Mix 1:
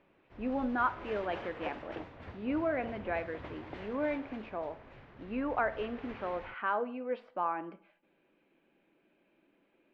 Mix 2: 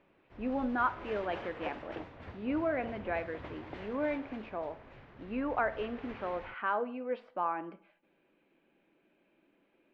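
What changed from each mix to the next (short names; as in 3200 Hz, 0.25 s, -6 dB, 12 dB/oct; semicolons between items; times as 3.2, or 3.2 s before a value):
none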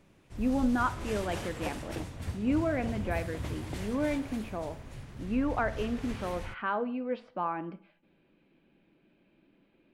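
background: remove air absorption 210 m; master: add tone controls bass +14 dB, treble +13 dB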